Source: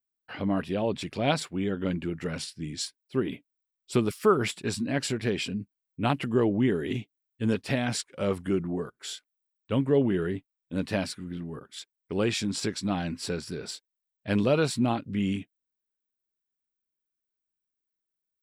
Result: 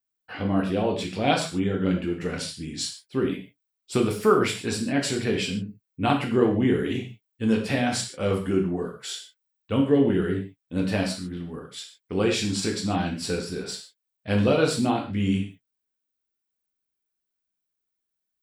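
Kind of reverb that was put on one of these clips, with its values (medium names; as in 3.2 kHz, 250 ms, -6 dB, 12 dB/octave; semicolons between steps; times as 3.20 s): gated-style reverb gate 170 ms falling, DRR 0.5 dB; trim +1 dB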